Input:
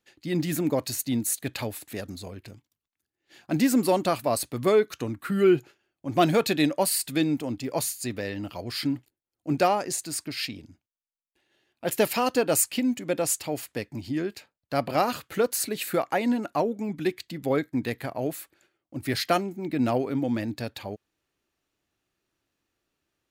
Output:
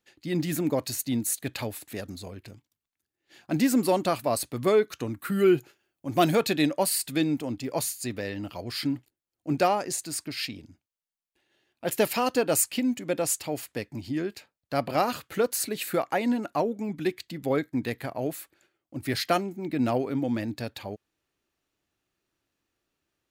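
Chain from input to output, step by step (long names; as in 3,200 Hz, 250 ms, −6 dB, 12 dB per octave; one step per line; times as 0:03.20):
0:05.11–0:06.35: high-shelf EQ 9,100 Hz +10.5 dB
level −1 dB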